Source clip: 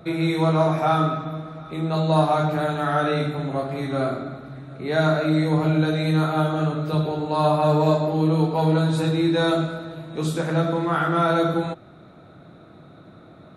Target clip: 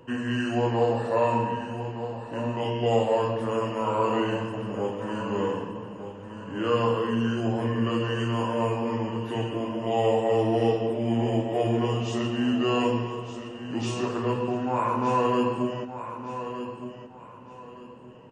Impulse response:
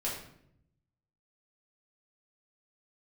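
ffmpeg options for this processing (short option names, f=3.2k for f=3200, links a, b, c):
-filter_complex "[0:a]equalizer=f=89:t=o:w=1.8:g=-13,asplit=2[a][b];[b]aecho=0:1:901|1802|2703:0.299|0.0866|0.0251[c];[a][c]amix=inputs=2:normalize=0,asetrate=32667,aresample=44100,volume=-2.5dB"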